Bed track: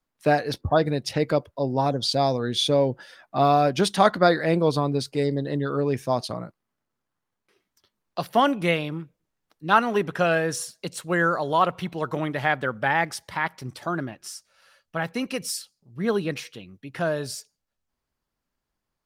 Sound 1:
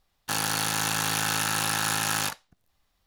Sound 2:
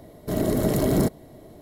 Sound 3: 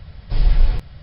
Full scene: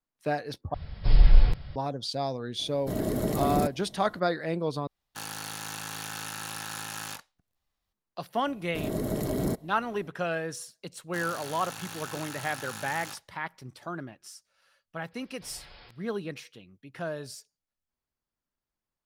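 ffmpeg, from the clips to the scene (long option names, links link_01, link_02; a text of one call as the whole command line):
ffmpeg -i bed.wav -i cue0.wav -i cue1.wav -i cue2.wav -filter_complex "[3:a]asplit=2[link_01][link_02];[2:a]asplit=2[link_03][link_04];[1:a]asplit=2[link_05][link_06];[0:a]volume=-9dB[link_07];[link_02]highpass=frequency=1300:poles=1[link_08];[link_07]asplit=3[link_09][link_10][link_11];[link_09]atrim=end=0.744[link_12];[link_01]atrim=end=1.02,asetpts=PTS-STARTPTS,volume=-2dB[link_13];[link_10]atrim=start=1.756:end=4.874[link_14];[link_05]atrim=end=3.06,asetpts=PTS-STARTPTS,volume=-11dB[link_15];[link_11]atrim=start=7.926[link_16];[link_03]atrim=end=1.61,asetpts=PTS-STARTPTS,volume=-6dB,afade=type=in:duration=0.004:curve=hsin,afade=type=out:start_time=1.606:duration=0.004:curve=hsin,adelay=2590[link_17];[link_04]atrim=end=1.61,asetpts=PTS-STARTPTS,volume=-8dB,afade=type=in:duration=0.004:curve=hsin,afade=type=out:start_time=1.606:duration=0.004:curve=hsin,adelay=8470[link_18];[link_06]atrim=end=3.06,asetpts=PTS-STARTPTS,volume=-14.5dB,afade=type=in:duration=0.004:curve=hsin,afade=type=out:start_time=3.056:duration=0.004:curve=hsin,adelay=10850[link_19];[link_08]atrim=end=1.02,asetpts=PTS-STARTPTS,volume=-11dB,afade=type=in:duration=0.02,afade=type=out:start_time=1:duration=0.02,adelay=15110[link_20];[link_12][link_13]acrossfade=duration=0.004:curve1=hsin:curve2=hsin[link_21];[link_21][link_14]acrossfade=duration=0.004:curve1=hsin:curve2=hsin[link_22];[link_22][link_15]acrossfade=duration=0.004:curve1=hsin:curve2=hsin[link_23];[link_23][link_16]acrossfade=duration=0.004:curve1=hsin:curve2=hsin[link_24];[link_24][link_17][link_18][link_19][link_20]amix=inputs=5:normalize=0" out.wav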